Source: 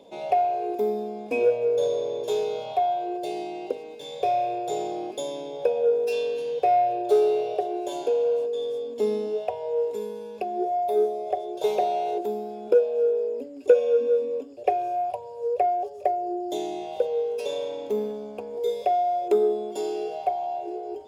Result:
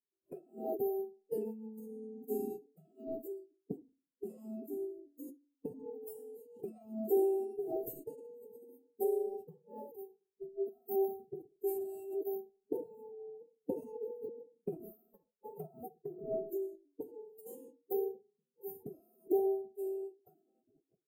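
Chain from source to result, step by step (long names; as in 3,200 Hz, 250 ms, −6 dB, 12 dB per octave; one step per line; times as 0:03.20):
noise gate −29 dBFS, range −32 dB
inverse Chebyshev band-stop filter 590–6,400 Hz, stop band 40 dB
noise reduction from a noise print of the clip's start 16 dB
convolution reverb RT60 0.30 s, pre-delay 3 ms, DRR 8.5 dB
phase-vocoder pitch shift with formants kept +10.5 semitones
level +7 dB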